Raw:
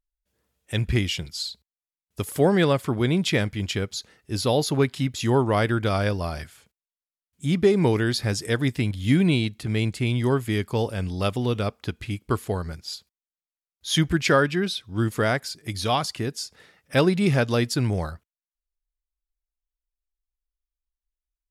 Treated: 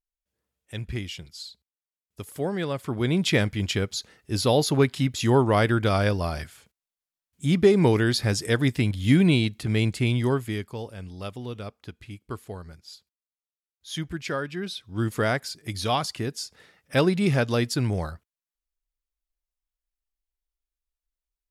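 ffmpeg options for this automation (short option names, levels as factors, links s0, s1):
-af "volume=3.16,afade=t=in:st=2.69:d=0.66:silence=0.316228,afade=t=out:st=10.05:d=0.72:silence=0.266073,afade=t=in:st=14.45:d=0.69:silence=0.354813"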